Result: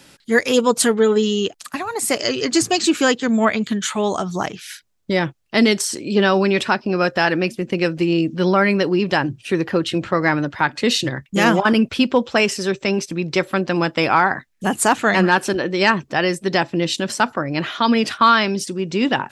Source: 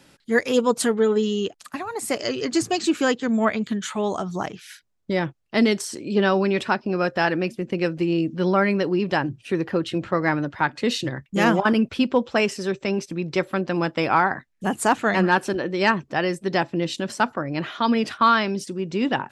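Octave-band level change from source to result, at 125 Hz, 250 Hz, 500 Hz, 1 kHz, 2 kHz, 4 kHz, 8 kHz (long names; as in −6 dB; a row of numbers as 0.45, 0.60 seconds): +3.5, +3.5, +3.5, +3.5, +5.0, +7.5, +9.0 decibels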